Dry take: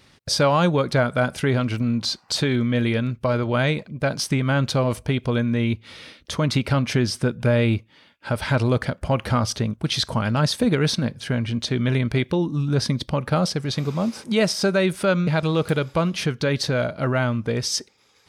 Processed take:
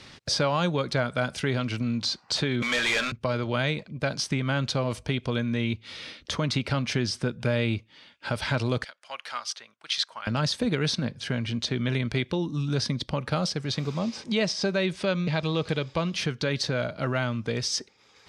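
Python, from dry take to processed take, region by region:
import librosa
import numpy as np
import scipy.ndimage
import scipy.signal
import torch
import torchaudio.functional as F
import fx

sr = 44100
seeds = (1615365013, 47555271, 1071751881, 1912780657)

y = fx.chain(x, sr, fx.highpass(hz=880.0, slope=12),
    fx.leveller(passes=5),
    fx.doubler(ms=44.0, db=-12.0), at=(2.62, 3.12))
y = fx.chain(y, sr, fx.highpass(hz=1200.0, slope=12),
    fx.upward_expand(threshold_db=-42.0, expansion=1.5), at=(8.84, 10.27))
y = fx.chain(y, sr, fx.lowpass(hz=6500.0, slope=12),
    fx.notch(hz=1400.0, q=8.7), at=(13.99, 16.13))
y = scipy.signal.sosfilt(scipy.signal.butter(2, 6000.0, 'lowpass', fs=sr, output='sos'), y)
y = fx.high_shelf(y, sr, hz=3100.0, db=8.5)
y = fx.band_squash(y, sr, depth_pct=40)
y = y * librosa.db_to_amplitude(-6.5)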